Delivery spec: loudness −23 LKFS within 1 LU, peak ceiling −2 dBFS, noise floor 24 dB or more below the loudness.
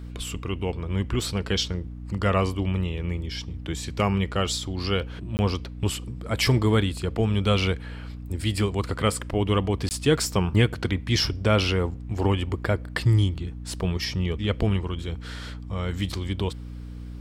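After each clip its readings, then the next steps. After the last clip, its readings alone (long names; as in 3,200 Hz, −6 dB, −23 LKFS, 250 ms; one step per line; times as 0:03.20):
number of dropouts 2; longest dropout 19 ms; mains hum 60 Hz; hum harmonics up to 300 Hz; level of the hum −35 dBFS; integrated loudness −26.0 LKFS; sample peak −6.5 dBFS; target loudness −23.0 LKFS
→ repair the gap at 0:05.37/0:09.89, 19 ms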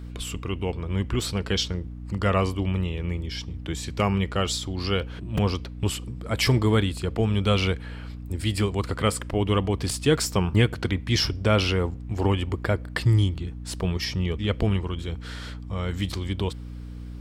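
number of dropouts 0; mains hum 60 Hz; hum harmonics up to 300 Hz; level of the hum −34 dBFS
→ mains-hum notches 60/120/180/240/300 Hz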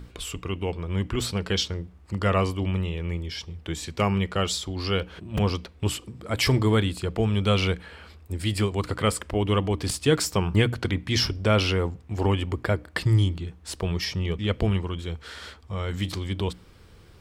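mains hum none found; integrated loudness −26.5 LKFS; sample peak −7.5 dBFS; target loudness −23.0 LKFS
→ level +3.5 dB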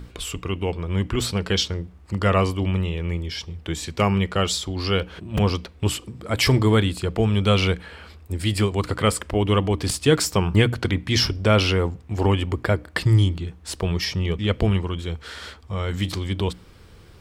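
integrated loudness −23.0 LKFS; sample peak −4.0 dBFS; background noise floor −47 dBFS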